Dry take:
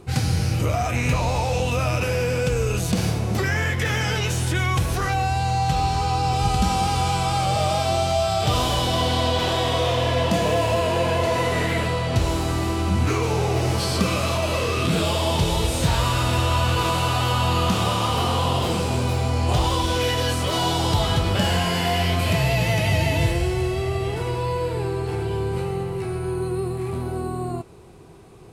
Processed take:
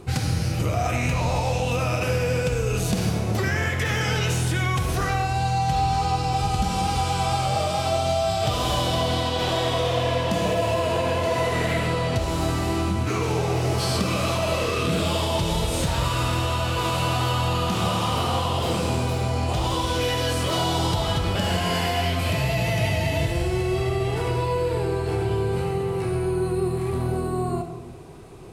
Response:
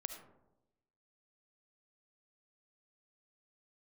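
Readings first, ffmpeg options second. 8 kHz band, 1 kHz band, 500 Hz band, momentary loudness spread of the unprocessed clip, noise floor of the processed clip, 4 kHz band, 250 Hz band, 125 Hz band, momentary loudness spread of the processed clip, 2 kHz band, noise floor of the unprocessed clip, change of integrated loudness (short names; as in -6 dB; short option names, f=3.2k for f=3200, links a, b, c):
-2.0 dB, -1.5 dB, -0.5 dB, 5 LU, -26 dBFS, -2.0 dB, -1.0 dB, -2.0 dB, 2 LU, -1.5 dB, -28 dBFS, -1.5 dB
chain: -filter_complex "[0:a]acompressor=threshold=-23dB:ratio=6[a];[1:a]atrim=start_sample=2205[b];[a][b]afir=irnorm=-1:irlink=0,volume=5.5dB"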